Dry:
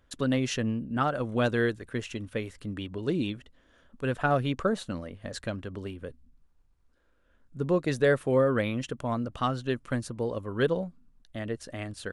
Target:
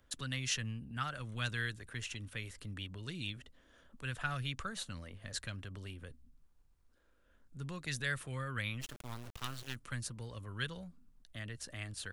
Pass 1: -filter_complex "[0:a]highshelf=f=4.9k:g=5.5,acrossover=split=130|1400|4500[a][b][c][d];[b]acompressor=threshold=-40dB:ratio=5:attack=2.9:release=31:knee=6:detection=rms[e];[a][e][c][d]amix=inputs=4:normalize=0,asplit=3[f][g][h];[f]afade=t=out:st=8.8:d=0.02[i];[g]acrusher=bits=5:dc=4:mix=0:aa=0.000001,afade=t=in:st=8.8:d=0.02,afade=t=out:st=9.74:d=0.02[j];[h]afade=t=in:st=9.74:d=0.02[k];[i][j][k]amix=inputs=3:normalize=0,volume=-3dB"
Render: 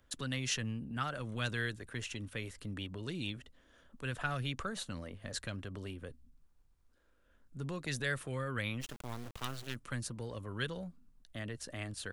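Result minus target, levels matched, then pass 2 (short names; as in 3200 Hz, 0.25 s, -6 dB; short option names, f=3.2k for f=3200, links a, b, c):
compressor: peak gain reduction -8.5 dB
-filter_complex "[0:a]highshelf=f=4.9k:g=5.5,acrossover=split=130|1400|4500[a][b][c][d];[b]acompressor=threshold=-50.5dB:ratio=5:attack=2.9:release=31:knee=6:detection=rms[e];[a][e][c][d]amix=inputs=4:normalize=0,asplit=3[f][g][h];[f]afade=t=out:st=8.8:d=0.02[i];[g]acrusher=bits=5:dc=4:mix=0:aa=0.000001,afade=t=in:st=8.8:d=0.02,afade=t=out:st=9.74:d=0.02[j];[h]afade=t=in:st=9.74:d=0.02[k];[i][j][k]amix=inputs=3:normalize=0,volume=-3dB"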